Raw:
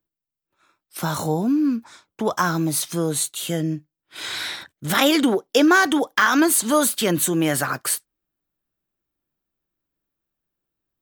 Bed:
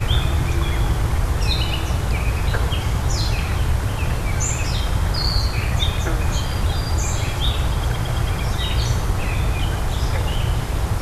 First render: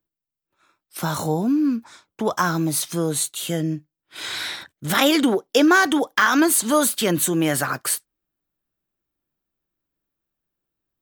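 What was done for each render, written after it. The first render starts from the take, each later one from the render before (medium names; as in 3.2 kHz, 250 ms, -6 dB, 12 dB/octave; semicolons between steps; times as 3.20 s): no audible change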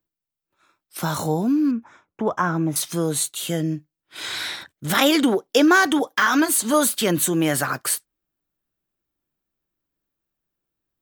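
1.71–2.76 s: boxcar filter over 10 samples; 5.99–6.74 s: comb of notches 170 Hz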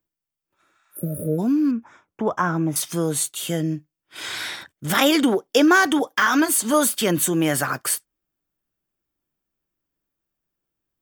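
band-stop 4 kHz, Q 10; 0.64–1.36 s: spectral replace 640–9400 Hz before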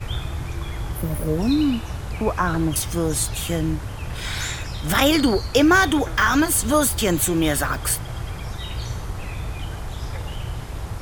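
add bed -9 dB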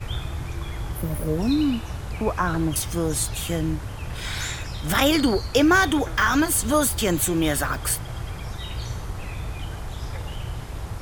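trim -2 dB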